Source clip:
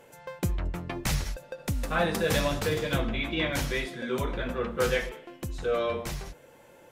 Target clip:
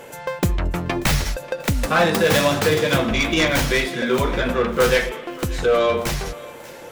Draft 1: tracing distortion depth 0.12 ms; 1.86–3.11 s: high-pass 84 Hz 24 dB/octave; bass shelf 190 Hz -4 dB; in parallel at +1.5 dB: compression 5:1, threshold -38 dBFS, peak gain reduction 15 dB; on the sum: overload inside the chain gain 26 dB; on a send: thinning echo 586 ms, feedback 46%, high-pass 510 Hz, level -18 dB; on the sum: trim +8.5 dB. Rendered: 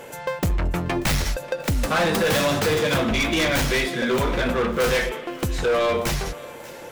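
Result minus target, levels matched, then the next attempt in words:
overload inside the chain: distortion +13 dB
tracing distortion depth 0.12 ms; 1.86–3.11 s: high-pass 84 Hz 24 dB/octave; bass shelf 190 Hz -4 dB; in parallel at +1.5 dB: compression 5:1, threshold -38 dBFS, peak gain reduction 15 dB; on the sum: overload inside the chain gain 18.5 dB; on a send: thinning echo 586 ms, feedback 46%, high-pass 510 Hz, level -18 dB; on the sum: trim +8.5 dB

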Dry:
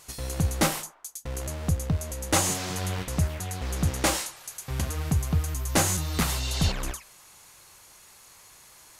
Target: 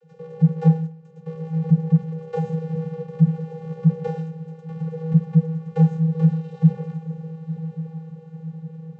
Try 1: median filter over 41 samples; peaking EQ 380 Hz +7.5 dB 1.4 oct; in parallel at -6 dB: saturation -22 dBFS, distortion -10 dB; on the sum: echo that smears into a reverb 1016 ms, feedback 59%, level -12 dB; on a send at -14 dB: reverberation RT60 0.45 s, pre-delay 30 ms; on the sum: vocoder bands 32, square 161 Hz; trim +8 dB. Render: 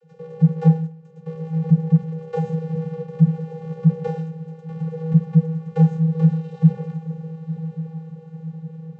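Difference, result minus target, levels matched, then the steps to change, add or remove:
saturation: distortion -6 dB
change: saturation -32 dBFS, distortion -4 dB

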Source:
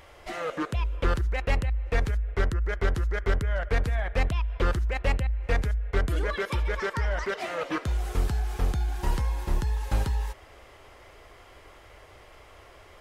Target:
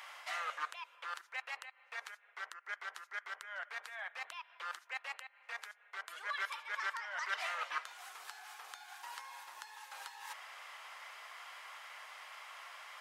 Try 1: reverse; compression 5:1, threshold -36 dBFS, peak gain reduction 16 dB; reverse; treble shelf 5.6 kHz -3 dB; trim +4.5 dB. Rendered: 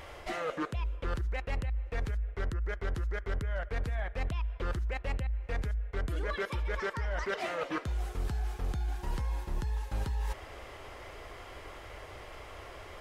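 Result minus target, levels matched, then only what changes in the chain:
1 kHz band -6.0 dB
add after second reverse: high-pass 920 Hz 24 dB/octave

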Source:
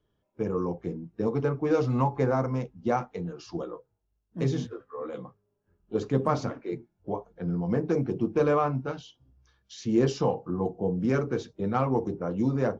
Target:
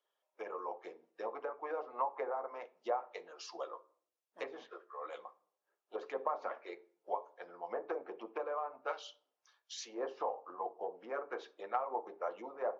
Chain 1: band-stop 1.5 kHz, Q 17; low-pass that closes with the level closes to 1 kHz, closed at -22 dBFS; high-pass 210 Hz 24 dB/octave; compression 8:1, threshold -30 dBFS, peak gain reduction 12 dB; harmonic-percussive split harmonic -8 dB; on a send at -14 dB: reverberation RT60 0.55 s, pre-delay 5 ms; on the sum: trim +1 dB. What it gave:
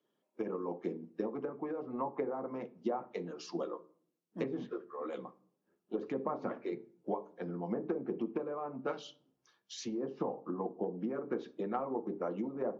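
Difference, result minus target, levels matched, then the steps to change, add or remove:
250 Hz band +13.0 dB
change: high-pass 580 Hz 24 dB/octave

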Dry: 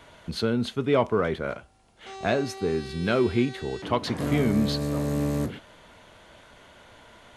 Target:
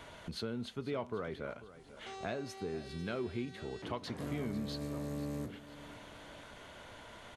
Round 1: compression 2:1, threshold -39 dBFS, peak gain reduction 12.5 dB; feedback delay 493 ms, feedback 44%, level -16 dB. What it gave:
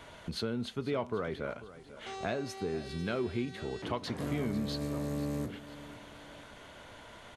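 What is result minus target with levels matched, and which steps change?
compression: peak gain reduction -4.5 dB
change: compression 2:1, threshold -48 dBFS, peak gain reduction 17 dB

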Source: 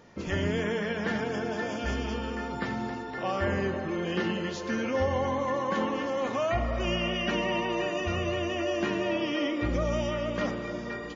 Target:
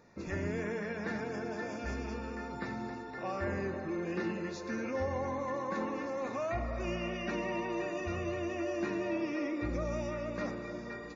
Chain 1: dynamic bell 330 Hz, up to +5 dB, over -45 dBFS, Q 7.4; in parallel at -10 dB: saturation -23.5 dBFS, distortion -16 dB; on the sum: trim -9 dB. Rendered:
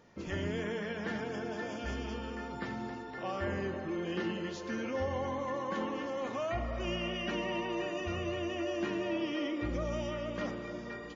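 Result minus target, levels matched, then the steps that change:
4 kHz band +7.5 dB
add after dynamic bell: Butterworth band-stop 3.1 kHz, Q 4.1

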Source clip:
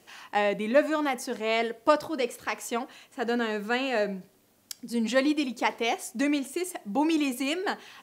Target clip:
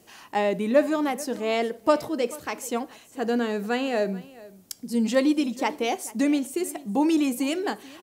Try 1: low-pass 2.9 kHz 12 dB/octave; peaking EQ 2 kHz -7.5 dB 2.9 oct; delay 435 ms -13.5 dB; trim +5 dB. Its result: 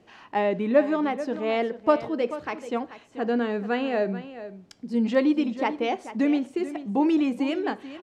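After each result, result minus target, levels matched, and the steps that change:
echo-to-direct +7 dB; 4 kHz band -4.5 dB
change: delay 435 ms -20.5 dB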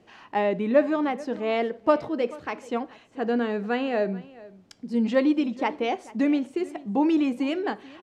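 4 kHz band -4.5 dB
remove: low-pass 2.9 kHz 12 dB/octave

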